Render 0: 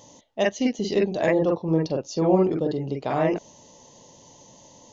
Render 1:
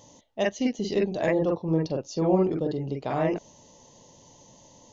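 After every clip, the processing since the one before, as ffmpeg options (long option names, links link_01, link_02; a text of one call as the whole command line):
ffmpeg -i in.wav -af "lowshelf=frequency=110:gain=6,volume=-3.5dB" out.wav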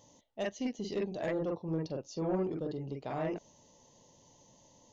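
ffmpeg -i in.wav -af "asoftclip=type=tanh:threshold=-16dB,volume=-8.5dB" out.wav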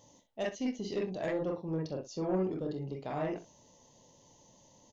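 ffmpeg -i in.wav -af "aecho=1:1:27|63:0.282|0.2" out.wav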